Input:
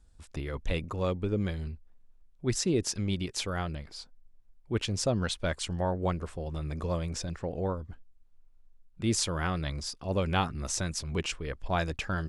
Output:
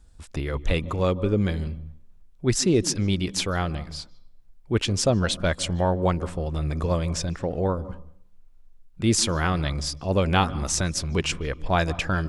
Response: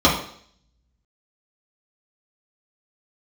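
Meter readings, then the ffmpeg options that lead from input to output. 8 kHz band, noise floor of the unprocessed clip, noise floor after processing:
+7.0 dB, -59 dBFS, -52 dBFS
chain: -filter_complex "[0:a]asplit=2[s0][s1];[1:a]atrim=start_sample=2205,highshelf=f=4800:g=-10,adelay=148[s2];[s1][s2]afir=irnorm=-1:irlink=0,volume=0.00944[s3];[s0][s3]amix=inputs=2:normalize=0,volume=2.24"

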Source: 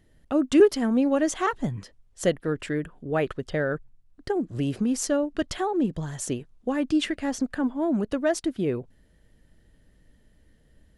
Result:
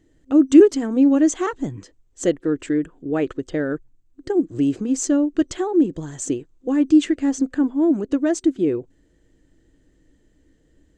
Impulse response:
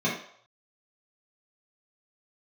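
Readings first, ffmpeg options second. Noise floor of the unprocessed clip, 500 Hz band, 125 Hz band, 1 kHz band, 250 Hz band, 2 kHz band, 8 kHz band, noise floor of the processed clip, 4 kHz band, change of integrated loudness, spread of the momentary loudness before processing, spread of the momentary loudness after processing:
-61 dBFS, +3.5 dB, -1.5 dB, -1.5 dB, +8.0 dB, -1.5 dB, +4.5 dB, -61 dBFS, -1.5 dB, +6.0 dB, 10 LU, 11 LU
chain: -af "superequalizer=6b=3.55:7b=1.78:15b=2.24:16b=0.316,volume=0.841"

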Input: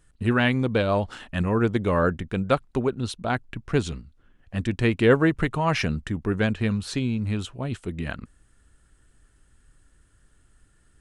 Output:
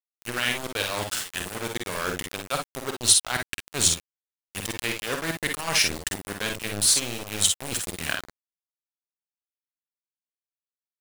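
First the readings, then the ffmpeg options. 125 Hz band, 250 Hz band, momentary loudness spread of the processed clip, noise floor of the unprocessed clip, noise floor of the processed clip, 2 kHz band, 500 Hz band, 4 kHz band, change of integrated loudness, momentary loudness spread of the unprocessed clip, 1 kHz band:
-12.5 dB, -12.0 dB, 12 LU, -62 dBFS, under -85 dBFS, 0.0 dB, -9.5 dB, +10.5 dB, 0.0 dB, 11 LU, -4.5 dB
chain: -af "highshelf=f=7500:g=9,areverse,acompressor=threshold=0.0398:ratio=10,areverse,crystalizer=i=8.5:c=0,aeval=exprs='val(0)*gte(abs(val(0)),0.0531)':c=same,aecho=1:1:49|60:0.501|0.398"

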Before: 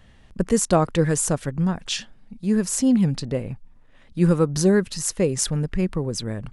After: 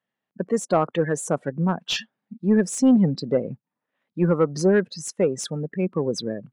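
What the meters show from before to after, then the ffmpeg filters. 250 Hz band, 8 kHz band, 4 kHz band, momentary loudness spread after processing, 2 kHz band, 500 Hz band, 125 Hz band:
-0.5 dB, -7.5 dB, -0.5 dB, 11 LU, +0.5 dB, +1.0 dB, -4.0 dB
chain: -filter_complex "[0:a]highpass=f=140:w=0.5412,highpass=f=140:w=1.3066,afftdn=nr=24:nf=-32,dynaudnorm=f=180:g=5:m=3.98,asplit=2[s0][s1];[s1]highpass=f=720:p=1,volume=4.47,asoftclip=type=tanh:threshold=0.944[s2];[s0][s2]amix=inputs=2:normalize=0,lowpass=f=1600:p=1,volume=0.501,volume=0.501"

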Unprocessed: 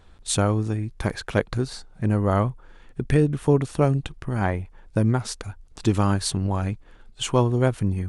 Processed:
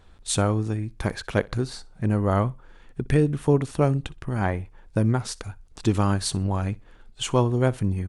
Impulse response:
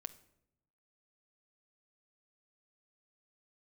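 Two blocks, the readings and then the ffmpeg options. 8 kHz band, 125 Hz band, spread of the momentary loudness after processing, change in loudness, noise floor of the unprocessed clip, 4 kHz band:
-1.0 dB, -1.0 dB, 10 LU, -1.0 dB, -51 dBFS, -1.0 dB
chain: -af "aecho=1:1:62|124:0.0668|0.0154,volume=0.891"

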